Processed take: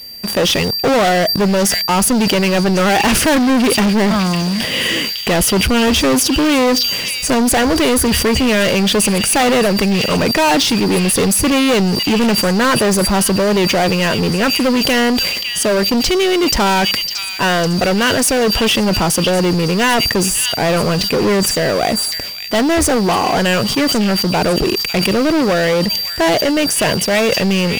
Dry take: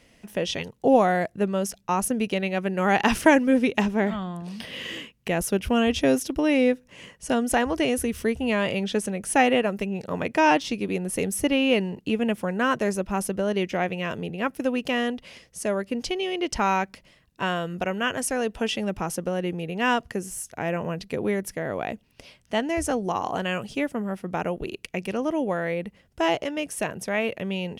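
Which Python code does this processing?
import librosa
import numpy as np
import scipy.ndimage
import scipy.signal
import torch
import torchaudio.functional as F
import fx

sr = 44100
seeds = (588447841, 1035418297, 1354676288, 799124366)

y = fx.leveller(x, sr, passes=2)
y = y + 10.0 ** (-38.0 / 20.0) * np.sin(2.0 * np.pi * 4700.0 * np.arange(len(y)) / sr)
y = fx.echo_stepped(y, sr, ms=554, hz=3600.0, octaves=0.7, feedback_pct=70, wet_db=-9)
y = fx.leveller(y, sr, passes=5)
y = fx.sustainer(y, sr, db_per_s=31.0)
y = F.gain(torch.from_numpy(y), -5.5).numpy()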